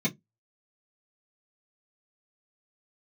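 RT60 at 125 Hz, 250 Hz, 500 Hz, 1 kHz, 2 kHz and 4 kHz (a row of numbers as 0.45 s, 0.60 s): 0.20 s, 0.25 s, 0.20 s, 0.10 s, 0.10 s, 0.10 s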